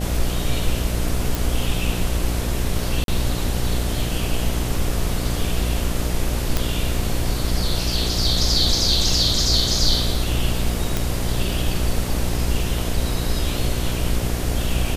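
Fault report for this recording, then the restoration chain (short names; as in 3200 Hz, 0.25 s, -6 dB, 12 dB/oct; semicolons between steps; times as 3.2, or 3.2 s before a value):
buzz 60 Hz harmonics 12 -25 dBFS
1.35 pop
3.04–3.08 gap 42 ms
6.57 pop
10.97 pop -6 dBFS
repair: de-click; de-hum 60 Hz, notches 12; interpolate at 3.04, 42 ms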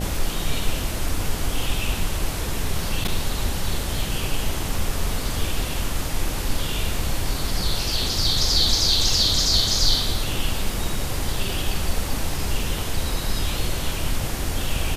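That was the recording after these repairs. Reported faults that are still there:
none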